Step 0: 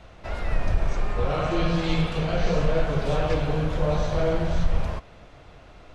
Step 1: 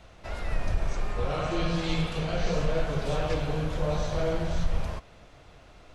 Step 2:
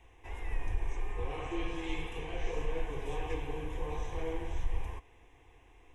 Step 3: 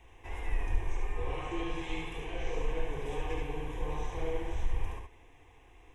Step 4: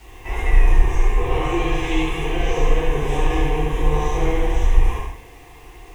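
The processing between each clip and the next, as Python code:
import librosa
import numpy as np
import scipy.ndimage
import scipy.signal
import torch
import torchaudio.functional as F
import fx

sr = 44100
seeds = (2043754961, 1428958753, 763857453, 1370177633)

y1 = fx.high_shelf(x, sr, hz=5100.0, db=8.5)
y1 = y1 * 10.0 ** (-4.5 / 20.0)
y2 = fx.fixed_phaser(y1, sr, hz=910.0, stages=8)
y2 = y2 * 10.0 ** (-5.0 / 20.0)
y3 = fx.rider(y2, sr, range_db=3, speed_s=2.0)
y3 = y3 + 10.0 ** (-3.5 / 20.0) * np.pad(y3, (int(72 * sr / 1000.0), 0))[:len(y3)]
y4 = fx.rev_plate(y3, sr, seeds[0], rt60_s=0.56, hf_ratio=1.0, predelay_ms=0, drr_db=-6.5)
y4 = fx.quant_dither(y4, sr, seeds[1], bits=10, dither='none')
y4 = y4 * 10.0 ** (8.0 / 20.0)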